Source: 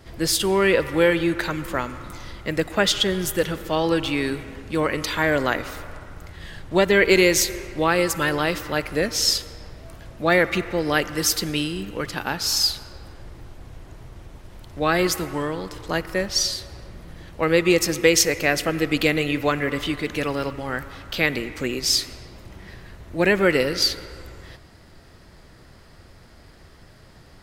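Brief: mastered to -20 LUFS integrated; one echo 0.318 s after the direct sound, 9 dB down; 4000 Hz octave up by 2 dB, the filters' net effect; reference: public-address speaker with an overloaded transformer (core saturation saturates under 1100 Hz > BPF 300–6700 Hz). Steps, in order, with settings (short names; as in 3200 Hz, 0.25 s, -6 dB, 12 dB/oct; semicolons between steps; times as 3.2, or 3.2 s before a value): bell 4000 Hz +3.5 dB; echo 0.318 s -9 dB; core saturation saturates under 1100 Hz; BPF 300–6700 Hz; gain +3.5 dB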